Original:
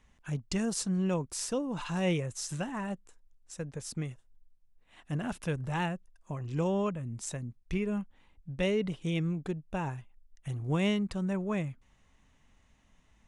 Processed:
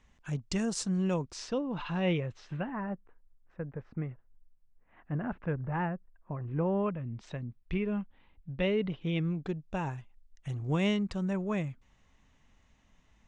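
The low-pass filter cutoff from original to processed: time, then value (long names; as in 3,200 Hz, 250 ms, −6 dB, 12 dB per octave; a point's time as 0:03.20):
low-pass filter 24 dB per octave
0:01.10 8,200 Hz
0:01.63 3,900 Hz
0:02.28 3,900 Hz
0:02.82 1,900 Hz
0:06.68 1,900 Hz
0:07.19 3,800 Hz
0:09.05 3,800 Hz
0:09.73 7,400 Hz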